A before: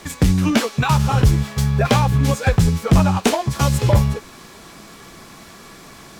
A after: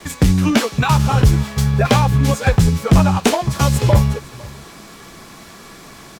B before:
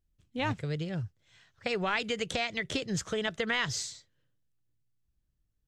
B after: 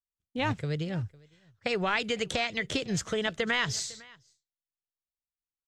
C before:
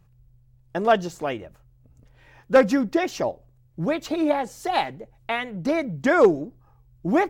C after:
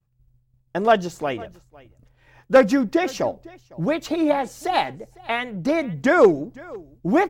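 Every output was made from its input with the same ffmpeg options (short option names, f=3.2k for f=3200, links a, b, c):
-af "aecho=1:1:504:0.075,agate=range=-33dB:threshold=-48dB:ratio=3:detection=peak,volume=2dB"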